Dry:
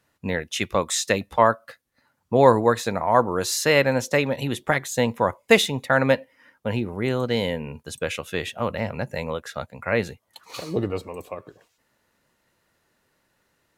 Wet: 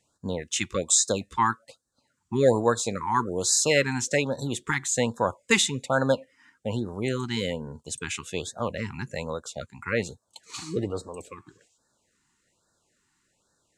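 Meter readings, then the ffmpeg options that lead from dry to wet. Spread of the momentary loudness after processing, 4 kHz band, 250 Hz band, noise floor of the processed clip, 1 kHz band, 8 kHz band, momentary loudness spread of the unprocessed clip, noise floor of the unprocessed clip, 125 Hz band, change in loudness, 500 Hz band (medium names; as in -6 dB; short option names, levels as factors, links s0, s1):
15 LU, -1.5 dB, -3.5 dB, -74 dBFS, -5.5 dB, +5.5 dB, 14 LU, -71 dBFS, -3.5 dB, -3.5 dB, -5.5 dB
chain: -af "lowpass=f=7700:t=q:w=3.9,afftfilt=real='re*(1-between(b*sr/1024,520*pow(2600/520,0.5+0.5*sin(2*PI*1.2*pts/sr))/1.41,520*pow(2600/520,0.5+0.5*sin(2*PI*1.2*pts/sr))*1.41))':imag='im*(1-between(b*sr/1024,520*pow(2600/520,0.5+0.5*sin(2*PI*1.2*pts/sr))/1.41,520*pow(2600/520,0.5+0.5*sin(2*PI*1.2*pts/sr))*1.41))':win_size=1024:overlap=0.75,volume=0.668"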